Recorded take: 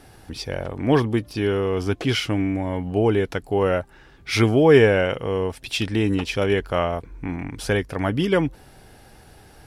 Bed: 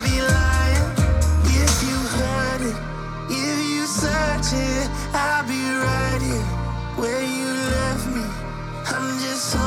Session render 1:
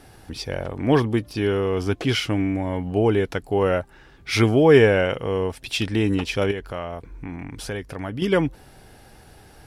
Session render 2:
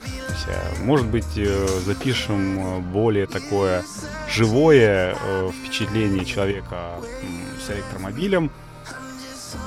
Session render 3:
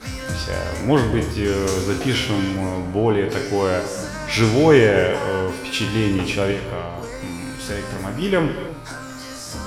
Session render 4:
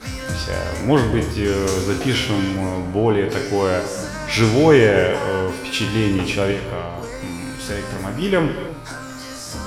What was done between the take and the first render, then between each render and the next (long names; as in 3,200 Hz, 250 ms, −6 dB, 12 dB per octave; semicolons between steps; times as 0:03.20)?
0:06.51–0:08.22: downward compressor 2 to 1, threshold −32 dBFS
mix in bed −11 dB
peak hold with a decay on every bin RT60 0.39 s; reverb whose tail is shaped and stops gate 330 ms flat, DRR 8.5 dB
level +1 dB; brickwall limiter −2 dBFS, peak gain reduction 1.5 dB